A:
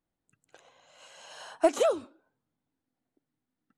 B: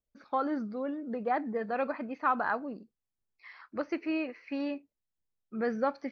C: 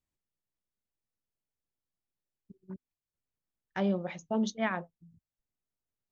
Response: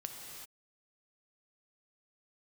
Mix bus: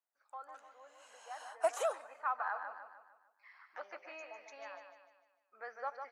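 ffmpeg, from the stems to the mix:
-filter_complex "[0:a]volume=-4.5dB,asplit=2[a][b];[b]volume=-20.5dB[c];[1:a]volume=-6.5dB,afade=t=in:st=1.76:d=0.3:silence=0.375837,asplit=3[d][e][f];[e]volume=-6.5dB[g];[2:a]acompressor=threshold=-36dB:ratio=2.5,volume=-9dB,asplit=2[h][i];[i]volume=-8.5dB[j];[f]apad=whole_len=269867[k];[h][k]sidechaingate=range=-33dB:threshold=-58dB:ratio=16:detection=peak[l];[3:a]atrim=start_sample=2205[m];[c][m]afir=irnorm=-1:irlink=0[n];[g][j]amix=inputs=2:normalize=0,aecho=0:1:150|300|450|600|750|900:1|0.46|0.212|0.0973|0.0448|0.0206[o];[a][d][l][n][o]amix=inputs=5:normalize=0,highpass=f=690:w=0.5412,highpass=f=690:w=1.3066,equalizer=f=3.7k:t=o:w=1.2:g=-8.5"

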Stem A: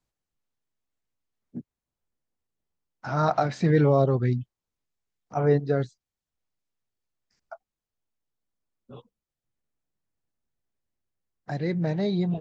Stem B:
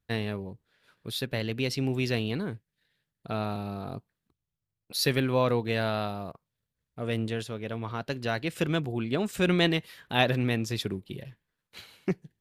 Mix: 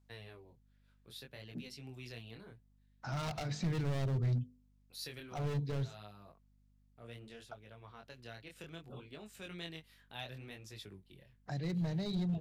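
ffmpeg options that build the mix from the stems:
-filter_complex "[0:a]bandreject=f=50:t=h:w=6,bandreject=f=100:t=h:w=6,bandreject=f=150:t=h:w=6,bandreject=f=200:t=h:w=6,bandreject=f=250:t=h:w=6,bandreject=f=300:t=h:w=6,bandreject=f=350:t=h:w=6,bandreject=f=400:t=h:w=6,bandreject=f=450:t=h:w=6,bandreject=f=500:t=h:w=6,volume=-2.5dB,asplit=2[a][b];[1:a]equalizer=f=200:w=0.61:g=-6.5,flanger=delay=19:depth=7.5:speed=0.65,volume=-13dB[c];[b]apad=whole_len=547045[d];[c][d]sidechaincompress=threshold=-29dB:ratio=8:attack=16:release=157[e];[a][e]amix=inputs=2:normalize=0,asoftclip=type=hard:threshold=-26dB,acrossover=split=170|3000[f][g][h];[g]acompressor=threshold=-51dB:ratio=2[i];[f][i][h]amix=inputs=3:normalize=0,aeval=exprs='val(0)+0.000398*(sin(2*PI*50*n/s)+sin(2*PI*2*50*n/s)/2+sin(2*PI*3*50*n/s)/3+sin(2*PI*4*50*n/s)/4+sin(2*PI*5*50*n/s)/5)':c=same"

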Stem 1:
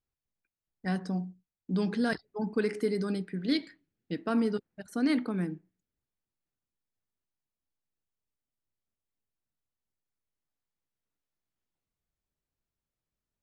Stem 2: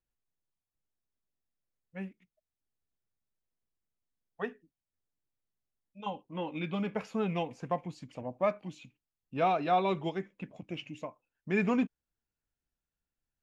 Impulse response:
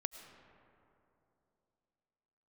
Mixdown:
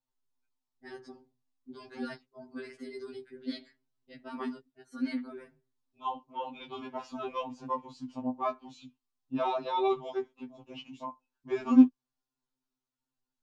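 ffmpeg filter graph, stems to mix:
-filter_complex "[0:a]lowshelf=f=110:t=q:w=1.5:g=-11.5,volume=-6.5dB[a];[1:a]equalizer=f=125:t=o:w=1:g=-11,equalizer=f=250:t=o:w=1:g=11,equalizer=f=500:t=o:w=1:g=-7,equalizer=f=1k:t=o:w=1:g=10,equalizer=f=2k:t=o:w=1:g=-12,equalizer=f=4k:t=o:w=1:g=5,volume=1dB[b];[a][b]amix=inputs=2:normalize=0,lowpass=7.6k,afftfilt=real='re*2.45*eq(mod(b,6),0)':imag='im*2.45*eq(mod(b,6),0)':win_size=2048:overlap=0.75"

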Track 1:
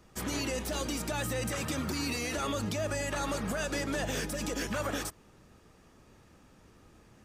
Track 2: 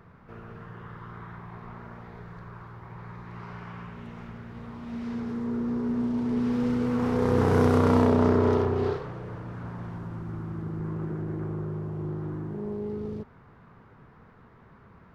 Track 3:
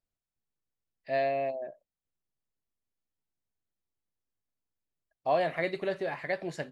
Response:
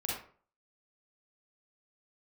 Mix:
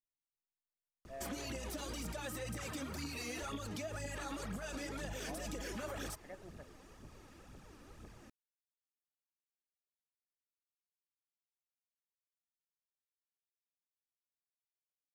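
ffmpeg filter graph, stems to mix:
-filter_complex "[0:a]alimiter=level_in=8.5dB:limit=-24dB:level=0:latency=1:release=25,volume=-8.5dB,aphaser=in_gain=1:out_gain=1:delay=4.1:decay=0.56:speed=2:type=triangular,adelay=1050,volume=0dB[a];[2:a]lowpass=1.6k,volume=-18.5dB[b];[a][b]amix=inputs=2:normalize=0,acompressor=threshold=-39dB:ratio=6"

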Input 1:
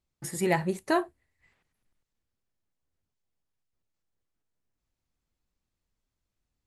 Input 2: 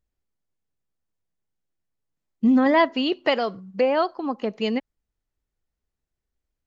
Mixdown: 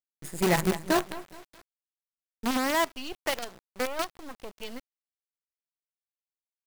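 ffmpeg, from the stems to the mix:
-filter_complex "[0:a]bandreject=f=5.6k:w=9.2,adynamicequalizer=threshold=0.01:dfrequency=150:dqfactor=0.99:tfrequency=150:tqfactor=0.99:attack=5:release=100:ratio=0.375:range=2:mode=boostabove:tftype=bell,volume=0dB,asplit=2[a][b];[b]volume=-10.5dB[c];[1:a]agate=range=-33dB:threshold=-40dB:ratio=3:detection=peak,lowshelf=f=490:g=-5,volume=-7.5dB[d];[c]aecho=0:1:210|420|630|840|1050:1|0.36|0.13|0.0467|0.0168[e];[a][d][e]amix=inputs=3:normalize=0,acrusher=bits=5:dc=4:mix=0:aa=0.000001"

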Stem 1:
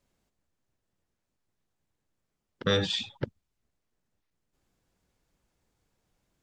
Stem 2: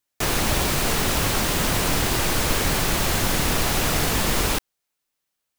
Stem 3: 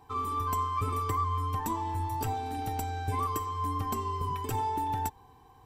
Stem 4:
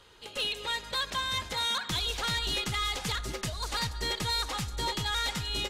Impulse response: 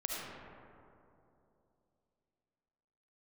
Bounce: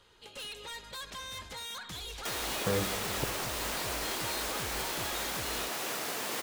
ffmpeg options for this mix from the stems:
-filter_complex "[0:a]lowpass=1.3k,volume=-6dB,asplit=2[a][b];[b]volume=-10.5dB[c];[1:a]highpass=350,alimiter=limit=-15.5dB:level=0:latency=1:release=350,adelay=2050,volume=-12.5dB,asplit=2[d][e];[e]volume=-6.5dB[f];[3:a]aeval=exprs='0.0562*sin(PI/2*1.58*val(0)/0.0562)':c=same,volume=-13.5dB[g];[4:a]atrim=start_sample=2205[h];[c][f]amix=inputs=2:normalize=0[i];[i][h]afir=irnorm=-1:irlink=0[j];[a][d][g][j]amix=inputs=4:normalize=0"

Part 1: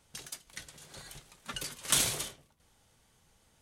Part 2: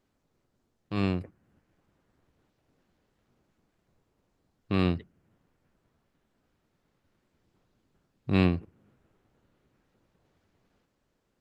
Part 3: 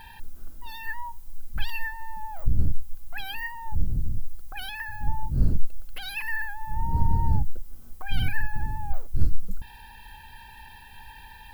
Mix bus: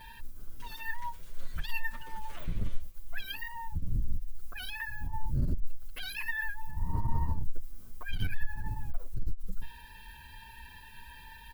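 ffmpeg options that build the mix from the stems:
-filter_complex "[0:a]acrossover=split=2900[a][b];[b]acompressor=threshold=-49dB:ratio=4:attack=1:release=60[c];[a][c]amix=inputs=2:normalize=0,bass=f=250:g=1,treble=f=4k:g=-6,acompressor=threshold=-44dB:ratio=12,adelay=450,volume=-1dB[d];[2:a]aeval=exprs='(tanh(8.91*val(0)+0.2)-tanh(0.2))/8.91':c=same,volume=0.5dB[e];[d][e]amix=inputs=2:normalize=0,acrusher=bits=10:mix=0:aa=0.000001,asuperstop=centerf=800:order=4:qfactor=5.2,asplit=2[f][g];[g]adelay=7.4,afreqshift=2.3[h];[f][h]amix=inputs=2:normalize=1"

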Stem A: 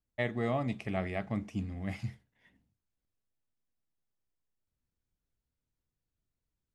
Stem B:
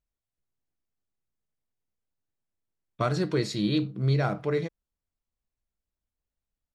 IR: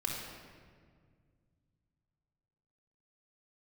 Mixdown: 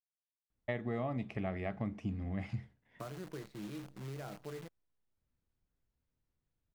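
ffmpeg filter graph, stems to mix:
-filter_complex "[0:a]aemphasis=mode=reproduction:type=75fm,adelay=500,volume=2dB[a];[1:a]lowpass=1.7k,acrossover=split=170|1100[b][c][d];[b]acompressor=threshold=-39dB:ratio=4[e];[c]acompressor=threshold=-31dB:ratio=4[f];[d]acompressor=threshold=-42dB:ratio=4[g];[e][f][g]amix=inputs=3:normalize=0,acrusher=bits=7:dc=4:mix=0:aa=0.000001,volume=-13dB[h];[a][h]amix=inputs=2:normalize=0,acompressor=threshold=-35dB:ratio=3"

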